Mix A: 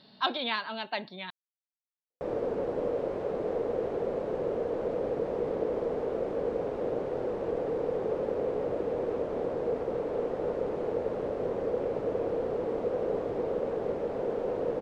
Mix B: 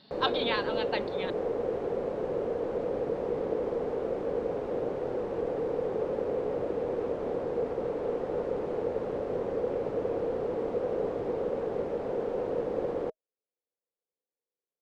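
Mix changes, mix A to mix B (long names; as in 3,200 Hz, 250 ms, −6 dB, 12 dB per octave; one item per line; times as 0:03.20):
background: entry −2.10 s
master: add notch filter 630 Hz, Q 19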